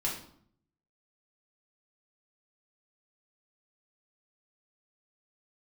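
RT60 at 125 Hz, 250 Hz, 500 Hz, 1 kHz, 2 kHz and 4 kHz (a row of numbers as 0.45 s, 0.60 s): 0.95 s, 0.80 s, 0.65 s, 0.60 s, 0.45 s, 0.45 s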